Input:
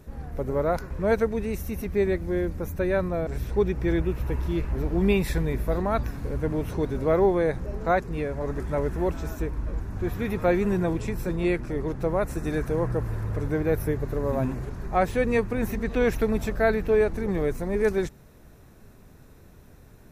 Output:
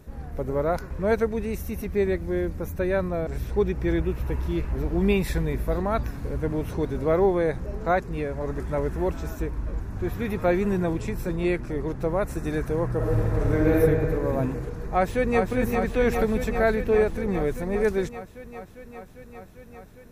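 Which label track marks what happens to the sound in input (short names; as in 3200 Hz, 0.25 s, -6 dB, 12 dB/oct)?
12.950000	13.760000	reverb throw, RT60 2.6 s, DRR -4.5 dB
14.780000	15.450000	echo throw 0.4 s, feedback 80%, level -5 dB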